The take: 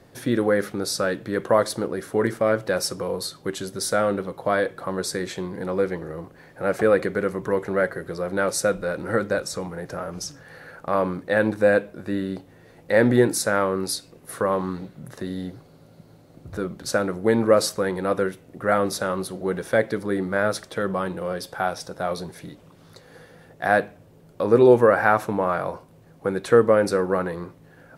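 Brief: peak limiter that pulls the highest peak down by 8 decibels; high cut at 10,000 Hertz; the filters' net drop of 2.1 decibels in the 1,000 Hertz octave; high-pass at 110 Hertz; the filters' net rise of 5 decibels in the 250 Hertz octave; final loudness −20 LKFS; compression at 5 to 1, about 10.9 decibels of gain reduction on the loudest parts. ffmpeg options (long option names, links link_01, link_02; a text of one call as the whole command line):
ffmpeg -i in.wav -af "highpass=110,lowpass=10000,equalizer=frequency=250:width_type=o:gain=7,equalizer=frequency=1000:width_type=o:gain=-3.5,acompressor=threshold=-20dB:ratio=5,volume=8dB,alimiter=limit=-8dB:level=0:latency=1" out.wav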